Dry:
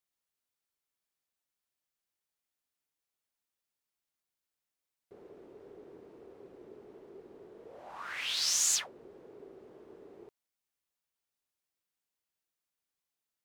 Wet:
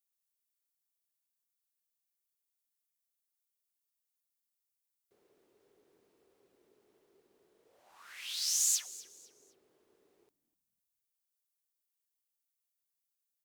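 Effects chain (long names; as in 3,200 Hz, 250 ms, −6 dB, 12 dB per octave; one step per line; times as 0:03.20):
first-order pre-emphasis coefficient 0.9
echo with shifted repeats 251 ms, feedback 32%, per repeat −110 Hz, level −18.5 dB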